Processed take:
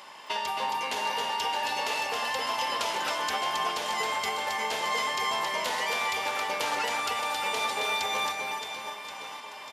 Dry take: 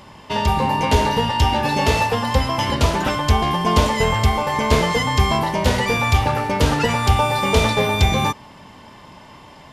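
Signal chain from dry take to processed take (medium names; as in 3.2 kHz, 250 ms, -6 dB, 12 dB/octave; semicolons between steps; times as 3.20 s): Bessel high-pass 860 Hz, order 2; compression 6:1, threshold -29 dBFS, peak gain reduction 11.5 dB; on a send: reverse bouncing-ball echo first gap 270 ms, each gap 1.3×, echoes 5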